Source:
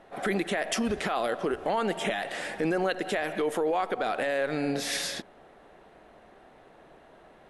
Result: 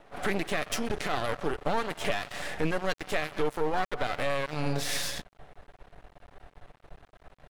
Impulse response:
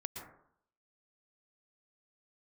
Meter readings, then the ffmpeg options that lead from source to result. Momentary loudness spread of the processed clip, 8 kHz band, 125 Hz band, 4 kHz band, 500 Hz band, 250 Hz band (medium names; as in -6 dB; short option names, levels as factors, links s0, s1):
2 LU, -1.0 dB, +3.5 dB, -1.0 dB, -3.5 dB, -4.0 dB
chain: -af "aecho=1:1:6.9:0.33,asubboost=boost=9:cutoff=93,aeval=exprs='max(val(0),0)':c=same,volume=1.26"